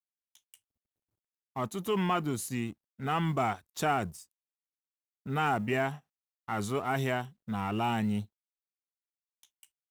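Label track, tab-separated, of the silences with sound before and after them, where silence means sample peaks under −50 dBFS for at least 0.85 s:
0.550000	1.560000	silence
4.240000	5.260000	silence
8.250000	9.430000	silence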